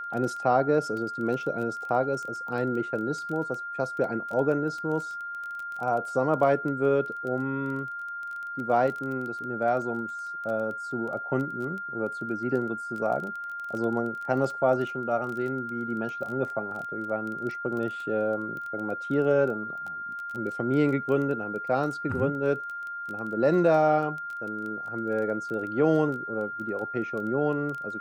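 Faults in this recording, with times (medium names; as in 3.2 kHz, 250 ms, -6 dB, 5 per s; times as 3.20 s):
crackle 16 per s -33 dBFS
whine 1.4 kHz -33 dBFS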